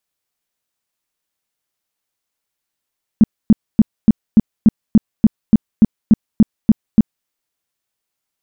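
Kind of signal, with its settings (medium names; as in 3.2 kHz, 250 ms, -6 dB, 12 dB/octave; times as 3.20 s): tone bursts 218 Hz, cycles 6, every 0.29 s, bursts 14, -3 dBFS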